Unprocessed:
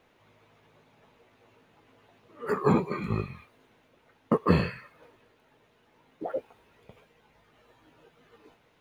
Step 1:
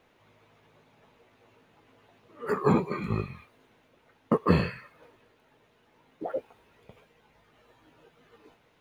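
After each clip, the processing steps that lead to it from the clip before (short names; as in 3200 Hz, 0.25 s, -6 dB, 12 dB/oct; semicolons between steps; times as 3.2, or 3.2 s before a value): nothing audible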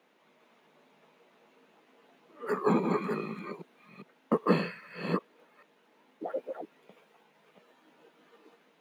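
reverse delay 0.402 s, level -4.5 dB; steep high-pass 170 Hz 48 dB/oct; gain -2.5 dB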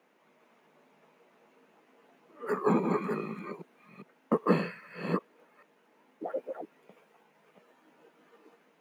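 bell 3700 Hz -6.5 dB 0.71 oct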